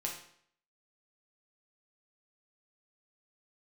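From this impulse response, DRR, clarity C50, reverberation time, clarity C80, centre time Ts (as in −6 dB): −1.5 dB, 5.5 dB, 0.60 s, 9.0 dB, 30 ms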